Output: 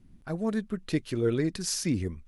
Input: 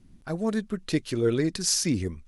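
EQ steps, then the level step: tone controls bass +2 dB, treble -10 dB; high shelf 7300 Hz +11 dB; -3.0 dB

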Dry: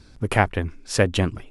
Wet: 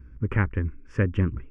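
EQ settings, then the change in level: tape spacing loss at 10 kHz 38 dB; bell 61 Hz +12.5 dB 0.34 oct; fixed phaser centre 1700 Hz, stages 4; 0.0 dB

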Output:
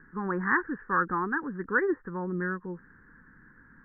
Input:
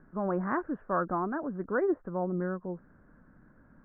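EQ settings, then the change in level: Butterworth band-stop 640 Hz, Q 1.9; synth low-pass 1800 Hz, resonance Q 6.9; 0.0 dB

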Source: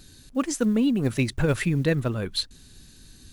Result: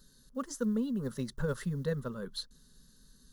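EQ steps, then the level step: bell 8200 Hz -5.5 dB 0.41 oct; fixed phaser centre 480 Hz, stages 8; -8.0 dB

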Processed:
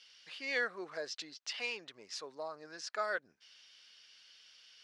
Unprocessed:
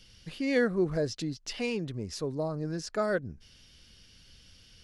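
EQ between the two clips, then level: HPF 990 Hz 12 dB/oct; LPF 5600 Hz 12 dB/oct; 0.0 dB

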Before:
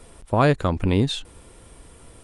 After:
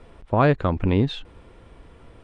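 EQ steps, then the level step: LPF 2900 Hz 12 dB/oct; 0.0 dB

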